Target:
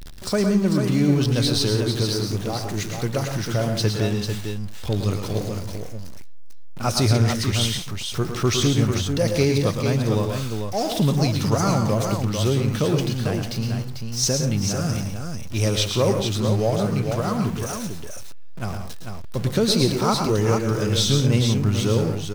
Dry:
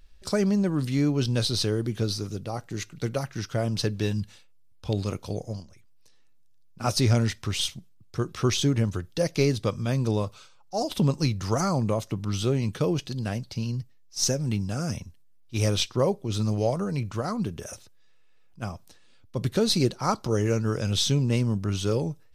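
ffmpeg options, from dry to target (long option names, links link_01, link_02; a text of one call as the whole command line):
ffmpeg -i in.wav -af "aeval=exprs='val(0)+0.5*0.02*sgn(val(0))':channel_layout=same,aecho=1:1:110|131|175|445:0.422|0.299|0.211|0.501,volume=2dB" out.wav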